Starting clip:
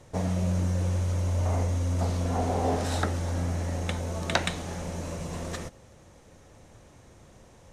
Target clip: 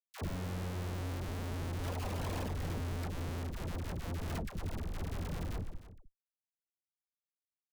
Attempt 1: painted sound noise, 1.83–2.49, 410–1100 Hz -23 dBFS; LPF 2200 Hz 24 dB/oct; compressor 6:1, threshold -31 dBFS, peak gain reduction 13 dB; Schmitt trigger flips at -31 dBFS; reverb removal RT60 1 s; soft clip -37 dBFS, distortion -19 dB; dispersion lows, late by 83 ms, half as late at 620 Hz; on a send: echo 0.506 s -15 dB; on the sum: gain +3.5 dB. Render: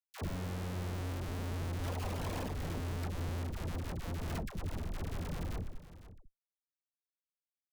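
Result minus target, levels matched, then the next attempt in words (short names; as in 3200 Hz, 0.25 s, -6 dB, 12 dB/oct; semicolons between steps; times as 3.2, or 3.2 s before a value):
echo 0.199 s late
painted sound noise, 1.83–2.49, 410–1100 Hz -23 dBFS; LPF 2200 Hz 24 dB/oct; compressor 6:1, threshold -31 dBFS, peak gain reduction 13 dB; Schmitt trigger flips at -31 dBFS; reverb removal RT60 1 s; soft clip -37 dBFS, distortion -19 dB; dispersion lows, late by 83 ms, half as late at 620 Hz; on a send: echo 0.307 s -15 dB; on the sum: gain +3.5 dB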